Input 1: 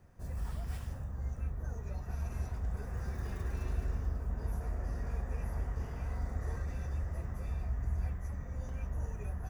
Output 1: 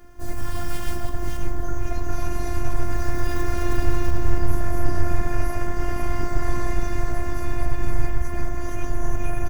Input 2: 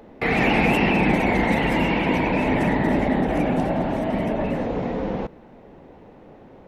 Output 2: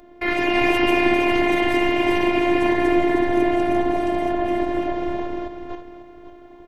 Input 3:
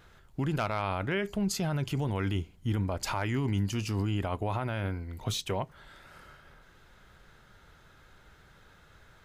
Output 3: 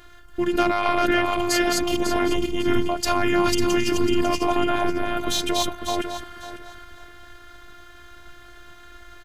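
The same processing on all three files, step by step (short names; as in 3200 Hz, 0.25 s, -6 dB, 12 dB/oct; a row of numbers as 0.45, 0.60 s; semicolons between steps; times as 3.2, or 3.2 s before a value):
regenerating reverse delay 0.274 s, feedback 46%, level -1 dB; comb 3.5 ms, depth 47%; robotiser 349 Hz; normalise peaks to -3 dBFS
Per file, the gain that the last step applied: +17.0, +0.5, +10.5 dB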